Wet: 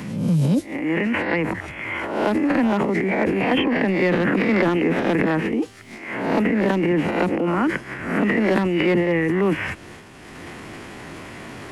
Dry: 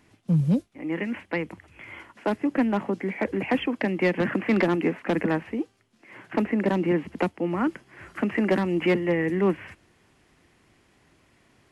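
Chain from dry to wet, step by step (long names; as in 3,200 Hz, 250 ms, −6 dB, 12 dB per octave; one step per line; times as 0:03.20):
peak hold with a rise ahead of every peak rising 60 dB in 0.49 s
transient designer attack −2 dB, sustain +10 dB
multiband upward and downward compressor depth 70%
level +2.5 dB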